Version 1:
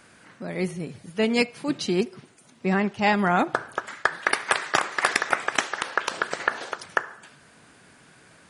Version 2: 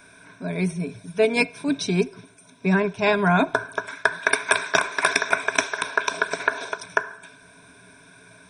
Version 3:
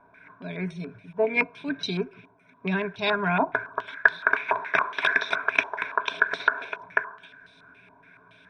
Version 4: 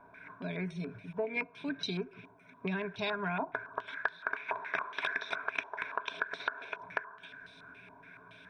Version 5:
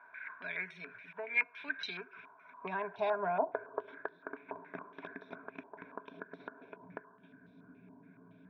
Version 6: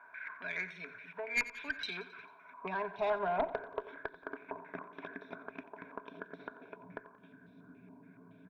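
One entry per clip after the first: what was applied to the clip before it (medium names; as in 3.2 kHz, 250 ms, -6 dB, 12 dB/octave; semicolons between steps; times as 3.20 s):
rippled EQ curve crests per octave 1.6, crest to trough 15 dB
step-sequenced low-pass 7.1 Hz 920–3900 Hz; trim -7.5 dB
compression 3:1, threshold -35 dBFS, peak gain reduction 17.5 dB
band-pass sweep 1.8 kHz -> 230 Hz, 1.83–4.64 s; trim +8.5 dB
Chebyshev shaper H 2 -12 dB, 5 -18 dB, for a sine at -18 dBFS; feedback delay 89 ms, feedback 55%, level -16 dB; trim -3 dB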